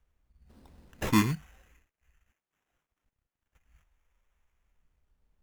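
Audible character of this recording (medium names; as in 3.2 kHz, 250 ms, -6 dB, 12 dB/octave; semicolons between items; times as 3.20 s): phasing stages 2, 0.42 Hz, lowest notch 200–2500 Hz; aliases and images of a low sample rate 4.5 kHz, jitter 0%; Opus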